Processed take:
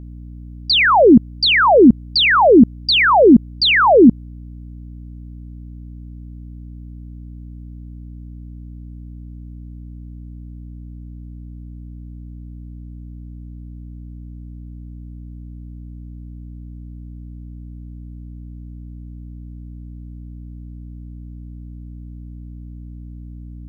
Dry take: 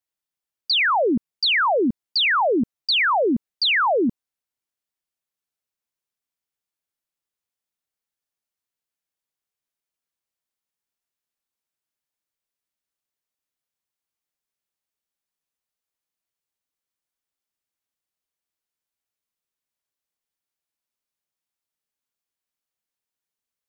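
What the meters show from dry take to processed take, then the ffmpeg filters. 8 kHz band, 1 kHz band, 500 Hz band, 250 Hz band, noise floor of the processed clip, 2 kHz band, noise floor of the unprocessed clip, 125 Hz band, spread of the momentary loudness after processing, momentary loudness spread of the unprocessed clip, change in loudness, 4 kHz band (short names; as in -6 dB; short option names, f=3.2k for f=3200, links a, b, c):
n/a, +7.5 dB, +10.5 dB, +13.0 dB, -35 dBFS, +5.5 dB, under -85 dBFS, +19.0 dB, 5 LU, 6 LU, +8.0 dB, +5.0 dB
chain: -af "lowshelf=f=470:g=11,aeval=exprs='val(0)+0.0126*(sin(2*PI*60*n/s)+sin(2*PI*2*60*n/s)/2+sin(2*PI*3*60*n/s)/3+sin(2*PI*4*60*n/s)/4+sin(2*PI*5*60*n/s)/5)':c=same,volume=5dB"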